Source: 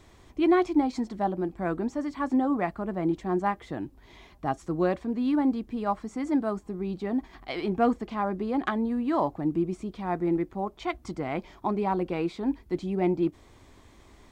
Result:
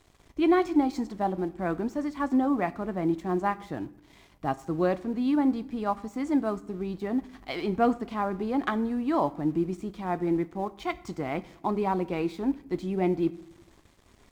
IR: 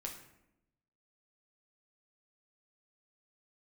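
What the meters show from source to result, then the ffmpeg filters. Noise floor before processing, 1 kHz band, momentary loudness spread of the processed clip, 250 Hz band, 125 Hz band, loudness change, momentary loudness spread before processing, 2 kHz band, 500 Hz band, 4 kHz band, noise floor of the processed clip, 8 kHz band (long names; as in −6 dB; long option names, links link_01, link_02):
−55 dBFS, 0.0 dB, 9 LU, 0.0 dB, 0.0 dB, 0.0 dB, 8 LU, 0.0 dB, 0.0 dB, +0.5 dB, −59 dBFS, can't be measured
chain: -filter_complex "[0:a]aeval=exprs='val(0)+0.00112*(sin(2*PI*50*n/s)+sin(2*PI*2*50*n/s)/2+sin(2*PI*3*50*n/s)/3+sin(2*PI*4*50*n/s)/4+sin(2*PI*5*50*n/s)/5)':channel_layout=same,aeval=exprs='sgn(val(0))*max(abs(val(0))-0.00178,0)':channel_layout=same,asplit=2[link_01][link_02];[1:a]atrim=start_sample=2205,highshelf=frequency=4100:gain=10.5[link_03];[link_02][link_03]afir=irnorm=-1:irlink=0,volume=-9.5dB[link_04];[link_01][link_04]amix=inputs=2:normalize=0,volume=-1.5dB"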